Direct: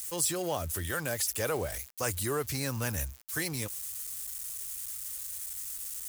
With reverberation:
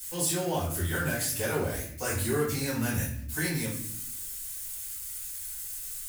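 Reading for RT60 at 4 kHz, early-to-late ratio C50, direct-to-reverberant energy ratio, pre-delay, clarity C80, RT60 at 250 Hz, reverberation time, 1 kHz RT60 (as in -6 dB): 0.45 s, 4.5 dB, -9.0 dB, 4 ms, 8.0 dB, 1.1 s, 0.65 s, 0.50 s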